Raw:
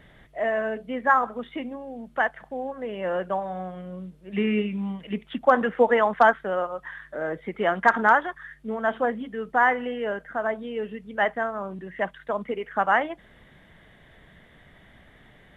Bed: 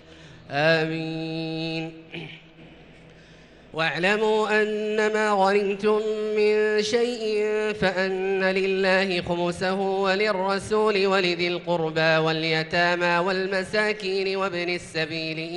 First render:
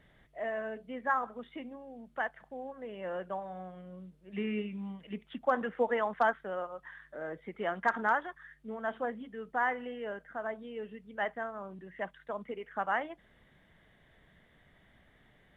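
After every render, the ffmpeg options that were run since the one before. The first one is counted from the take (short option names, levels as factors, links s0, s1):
-af "volume=0.299"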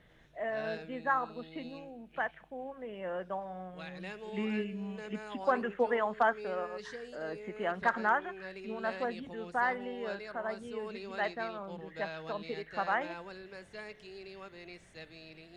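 -filter_complex "[1:a]volume=0.0708[s0];[0:a][s0]amix=inputs=2:normalize=0"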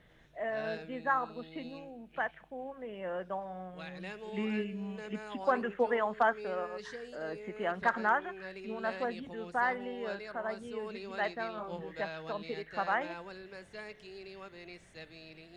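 -filter_complex "[0:a]asettb=1/sr,asplit=3[s0][s1][s2];[s0]atrim=end=11.554[s3];[s1]atrim=start=11.55:end=12.01,asetpts=PTS-STARTPTS,afade=t=in:d=0.004:c=qsin,afade=t=out:st=0.456:d=0.004:c=qsin,asplit=2[s4][s5];[s5]adelay=23,volume=0.794[s6];[s4][s6]amix=inputs=2:normalize=0,atrim=end_sample=20286[s7];[s2]atrim=start=12.006[s8];[s3][s7]acrossfade=d=0.004:c1=hsin:c2=qsin[s9];[s9][s8]acrossfade=d=0.004:c1=qsin:c2=hsin"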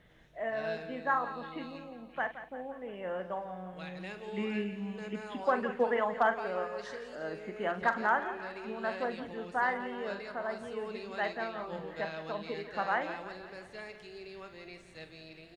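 -filter_complex "[0:a]asplit=2[s0][s1];[s1]adelay=44,volume=0.282[s2];[s0][s2]amix=inputs=2:normalize=0,aecho=1:1:172|344|516|688|860|1032:0.224|0.125|0.0702|0.0393|0.022|0.0123"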